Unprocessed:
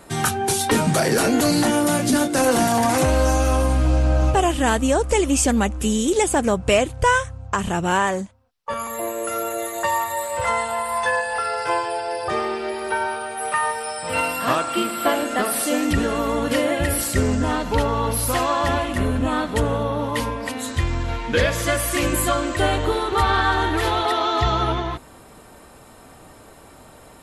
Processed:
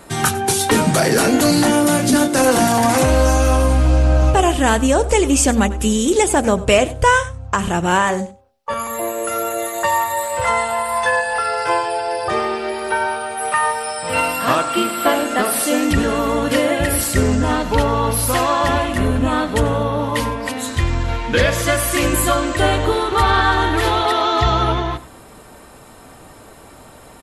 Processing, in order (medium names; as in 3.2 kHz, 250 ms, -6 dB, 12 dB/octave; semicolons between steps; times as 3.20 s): de-hum 78.99 Hz, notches 10; on a send: delay 95 ms -18 dB; on the sum: trim +4 dB